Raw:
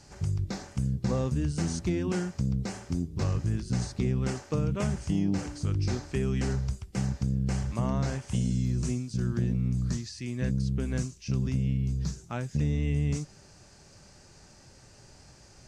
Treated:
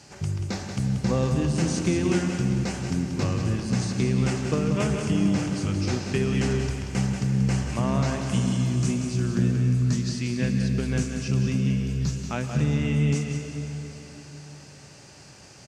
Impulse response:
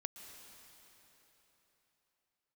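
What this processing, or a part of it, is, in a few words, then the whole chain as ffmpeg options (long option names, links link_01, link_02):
PA in a hall: -filter_complex "[0:a]highpass=110,equalizer=frequency=2700:width_type=o:width=0.74:gain=4.5,aecho=1:1:184:0.422[link_01];[1:a]atrim=start_sample=2205[link_02];[link_01][link_02]afir=irnorm=-1:irlink=0,volume=8.5dB"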